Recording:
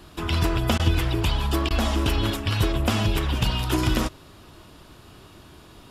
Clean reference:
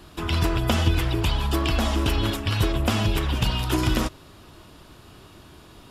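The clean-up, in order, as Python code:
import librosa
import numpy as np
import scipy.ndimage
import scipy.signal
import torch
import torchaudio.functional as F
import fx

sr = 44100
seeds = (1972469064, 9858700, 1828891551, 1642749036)

y = fx.fix_declip(x, sr, threshold_db=-9.5)
y = fx.fix_interpolate(y, sr, at_s=(0.78, 1.69), length_ms=14.0)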